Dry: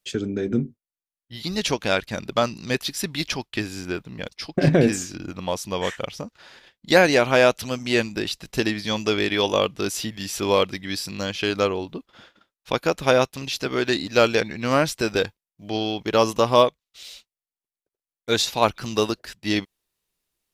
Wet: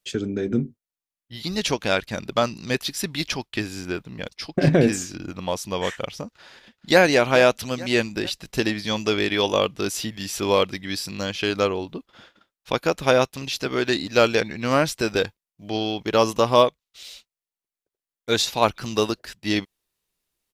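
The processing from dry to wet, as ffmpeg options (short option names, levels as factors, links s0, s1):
-filter_complex "[0:a]asplit=2[s0][s1];[s1]afade=t=in:st=6.24:d=0.01,afade=t=out:st=7:d=0.01,aecho=0:1:430|860|1290|1720|2150:0.16788|0.0923342|0.0507838|0.0279311|0.0153621[s2];[s0][s2]amix=inputs=2:normalize=0"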